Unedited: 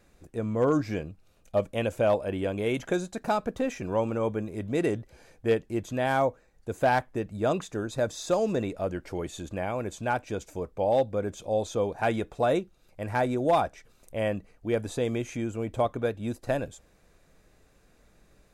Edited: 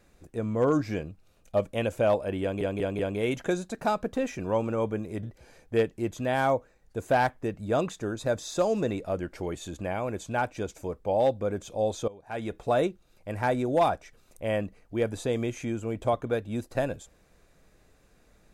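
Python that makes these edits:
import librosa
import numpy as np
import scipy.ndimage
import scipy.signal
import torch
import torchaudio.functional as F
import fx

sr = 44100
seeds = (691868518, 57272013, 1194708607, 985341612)

y = fx.edit(x, sr, fx.stutter(start_s=2.42, slice_s=0.19, count=4),
    fx.cut(start_s=4.66, length_s=0.29),
    fx.fade_in_from(start_s=11.8, length_s=0.5, curve='qua', floor_db=-19.5), tone=tone)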